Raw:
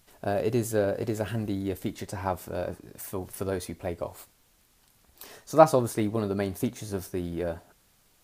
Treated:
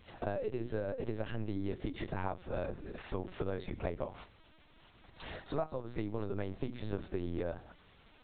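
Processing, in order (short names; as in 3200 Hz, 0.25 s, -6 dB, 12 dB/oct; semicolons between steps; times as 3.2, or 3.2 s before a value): notches 60/120/180/240/300/360 Hz; compressor 12:1, threshold -38 dBFS, peak gain reduction 27.5 dB; LPC vocoder at 8 kHz pitch kept; gain +5 dB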